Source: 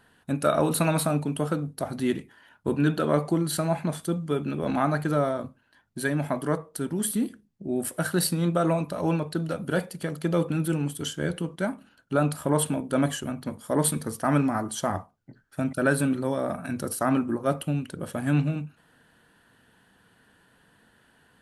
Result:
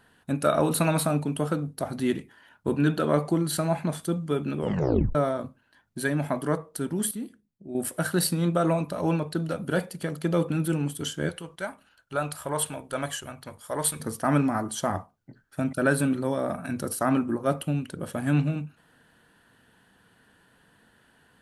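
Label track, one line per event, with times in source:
4.590000	4.590000	tape stop 0.56 s
7.110000	7.750000	gain -8.5 dB
11.290000	14.000000	bell 230 Hz -14.5 dB 1.7 oct

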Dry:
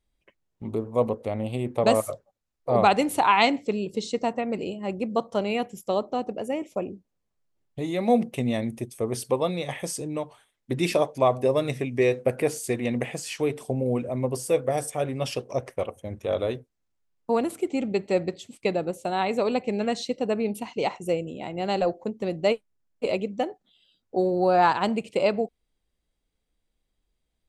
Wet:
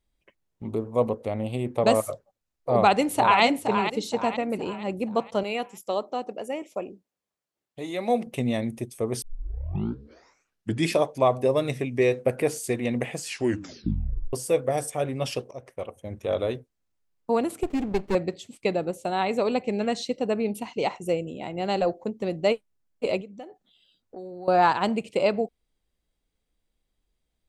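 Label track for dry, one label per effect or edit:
2.710000	3.420000	echo throw 0.47 s, feedback 45%, level -7.5 dB
5.430000	8.270000	HPF 440 Hz 6 dB/oct
9.220000	9.220000	tape start 1.73 s
13.270000	13.270000	tape stop 1.06 s
15.510000	16.200000	fade in, from -15.5 dB
17.630000	18.150000	running maximum over 33 samples
23.210000	24.480000	compressor 2.5:1, threshold -44 dBFS

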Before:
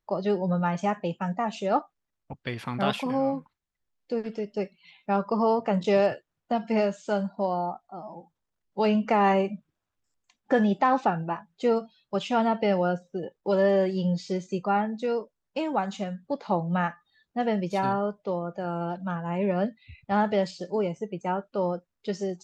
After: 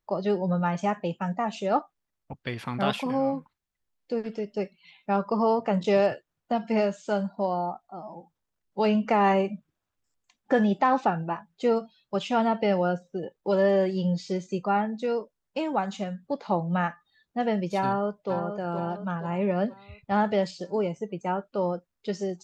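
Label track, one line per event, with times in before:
17.820000	18.320000	echo throw 0.47 s, feedback 50%, level -8 dB

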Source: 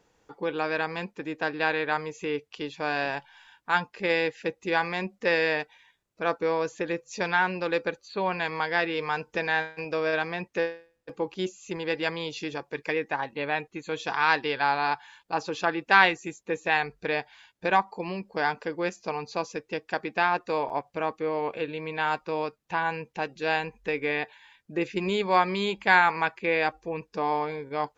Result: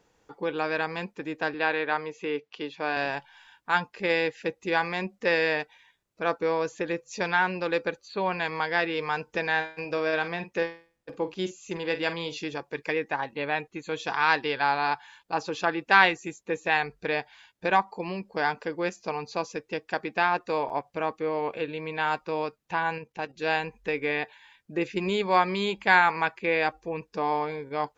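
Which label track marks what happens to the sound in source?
1.540000	2.970000	BPF 190–4500 Hz
9.560000	12.410000	doubler 47 ms -12 dB
22.980000	23.390000	level quantiser steps of 10 dB

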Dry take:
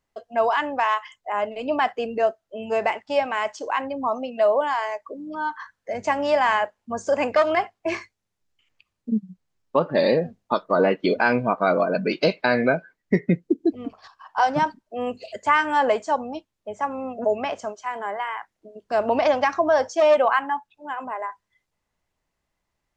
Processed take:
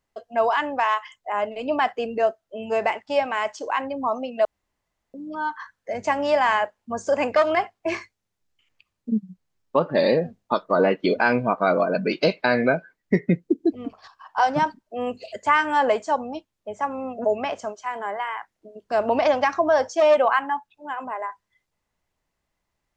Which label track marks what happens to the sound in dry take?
4.450000	5.140000	room tone

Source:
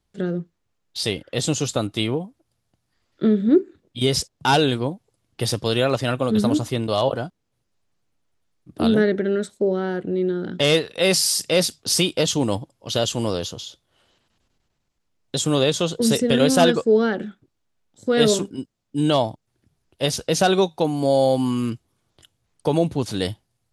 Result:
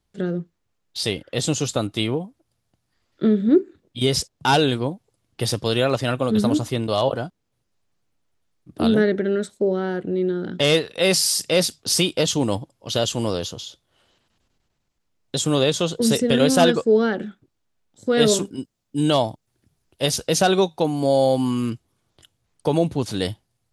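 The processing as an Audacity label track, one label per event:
18.310000	20.390000	high shelf 6100 Hz +5.5 dB

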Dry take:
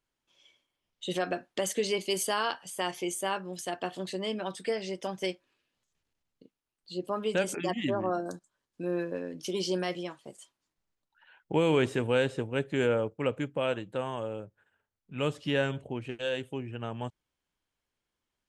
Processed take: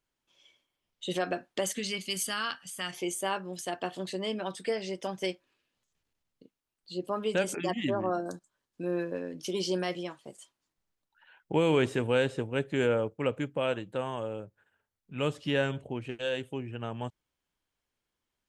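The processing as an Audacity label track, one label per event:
1.720000	2.930000	spectral gain 260–1100 Hz -11 dB

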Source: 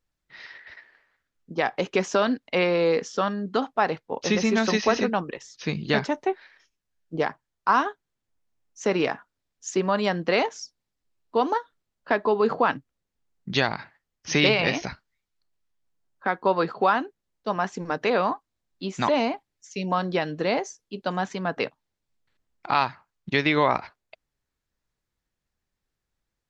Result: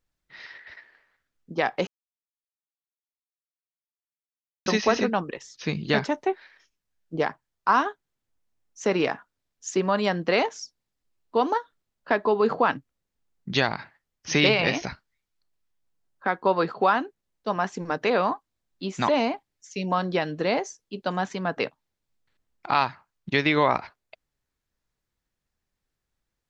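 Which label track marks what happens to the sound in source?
1.870000	4.660000	mute

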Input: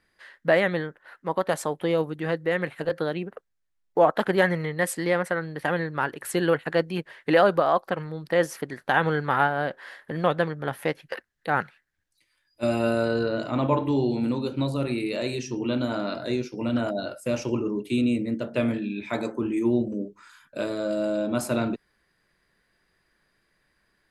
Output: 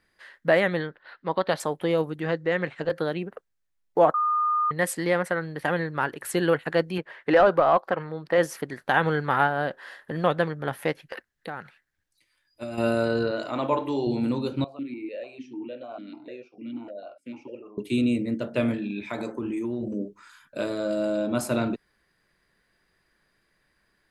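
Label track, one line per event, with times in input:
0.800000	1.600000	resonant high shelf 5700 Hz -10.5 dB, Q 3
2.240000	2.900000	steep low-pass 7400 Hz
4.140000	4.710000	bleep 1220 Hz -20.5 dBFS
6.980000	8.380000	overdrive pedal drive 12 dB, tone 1200 Hz, clips at -6.5 dBFS
9.470000	10.250000	notch 2200 Hz, Q 13
10.990000	12.780000	compressor 8:1, threshold -30 dBFS
13.310000	14.070000	tone controls bass -12 dB, treble +2 dB
14.640000	17.780000	vowel sequencer 6.7 Hz
18.740000	19.830000	compressor, threshold -26 dBFS

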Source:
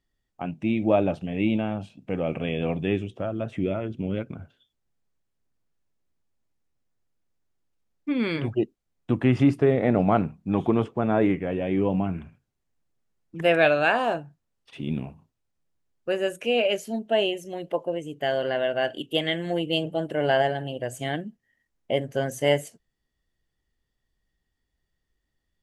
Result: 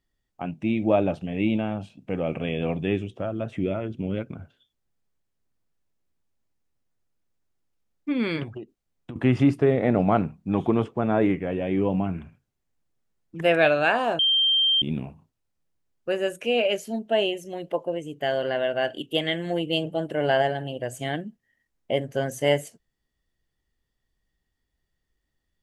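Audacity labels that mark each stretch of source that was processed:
8.430000	9.160000	compressor 16:1, threshold -32 dBFS
14.190000	14.820000	bleep 3160 Hz -17.5 dBFS

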